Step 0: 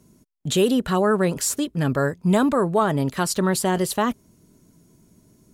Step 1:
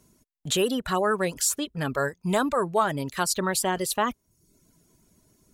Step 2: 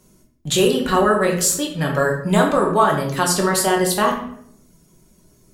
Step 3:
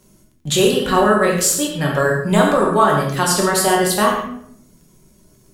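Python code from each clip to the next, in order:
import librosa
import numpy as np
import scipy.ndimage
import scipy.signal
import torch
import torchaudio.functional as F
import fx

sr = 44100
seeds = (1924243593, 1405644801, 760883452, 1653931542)

y1 = fx.dereverb_blind(x, sr, rt60_s=0.61)
y1 = fx.peak_eq(y1, sr, hz=190.0, db=-8.0, octaves=2.7)
y2 = fx.room_shoebox(y1, sr, seeds[0], volume_m3=140.0, walls='mixed', distance_m=1.0)
y2 = y2 * librosa.db_to_amplitude(4.0)
y3 = fx.dmg_crackle(y2, sr, seeds[1], per_s=16.0, level_db=-45.0)
y3 = fx.rev_gated(y3, sr, seeds[2], gate_ms=150, shape='flat', drr_db=5.0)
y3 = y3 * librosa.db_to_amplitude(1.0)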